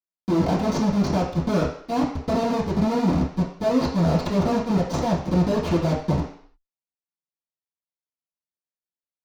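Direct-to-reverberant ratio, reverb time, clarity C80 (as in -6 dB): -11.0 dB, 0.55 s, 9.0 dB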